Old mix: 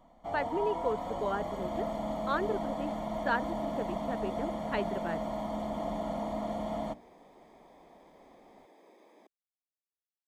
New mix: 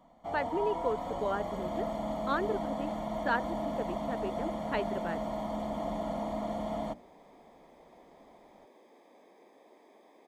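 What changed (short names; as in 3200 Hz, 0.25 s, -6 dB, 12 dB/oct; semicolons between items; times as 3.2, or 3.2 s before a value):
speech: add steep high-pass 160 Hz; second sound: entry +2.35 s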